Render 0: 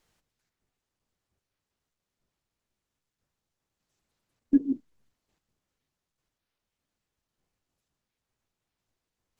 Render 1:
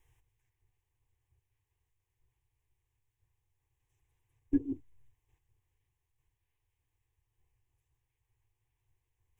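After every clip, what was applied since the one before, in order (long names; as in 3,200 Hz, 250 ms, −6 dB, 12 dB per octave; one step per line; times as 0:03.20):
low shelf with overshoot 160 Hz +10 dB, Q 3
phaser with its sweep stopped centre 910 Hz, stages 8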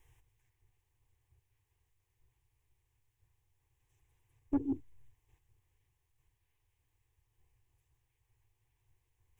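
in parallel at −1 dB: brickwall limiter −26.5 dBFS, peak gain reduction 9 dB
on the sum: soft clipping −21.5 dBFS, distortion −13 dB
level −2 dB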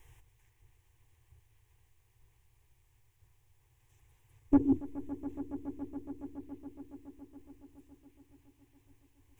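echo that builds up and dies away 140 ms, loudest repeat 5, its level −16 dB
level +7.5 dB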